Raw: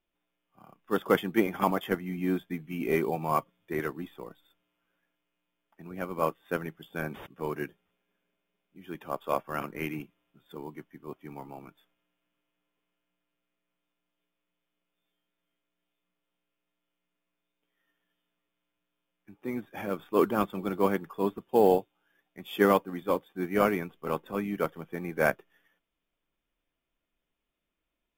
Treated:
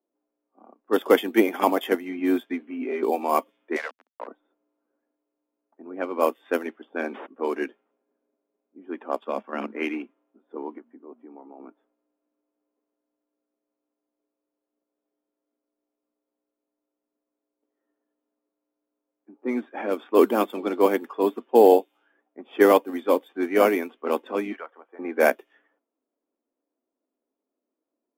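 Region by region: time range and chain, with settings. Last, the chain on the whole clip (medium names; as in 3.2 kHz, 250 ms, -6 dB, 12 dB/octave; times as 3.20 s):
2.60–3.03 s: comb 7.5 ms, depth 51% + compression 3:1, threshold -36 dBFS
3.76–4.27 s: steep high-pass 510 Hz 72 dB/octave + small samples zeroed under -42.5 dBFS + three bands compressed up and down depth 100%
9.18–9.76 s: peaking EQ 210 Hz +12 dB 0.47 oct + level held to a coarse grid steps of 11 dB
10.78–11.60 s: de-hum 58.94 Hz, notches 4 + compression 2.5:1, threshold -49 dBFS
24.52–24.99 s: high-pass 870 Hz + compression 2:1, threshold -46 dBFS
whole clip: elliptic high-pass 240 Hz, stop band 40 dB; level-controlled noise filter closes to 590 Hz, open at -27.5 dBFS; dynamic bell 1.3 kHz, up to -6 dB, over -44 dBFS, Q 2; trim +8 dB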